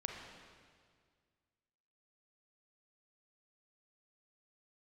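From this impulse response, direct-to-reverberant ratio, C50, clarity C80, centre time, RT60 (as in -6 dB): 1.5 dB, 2.5 dB, 4.0 dB, 70 ms, 1.9 s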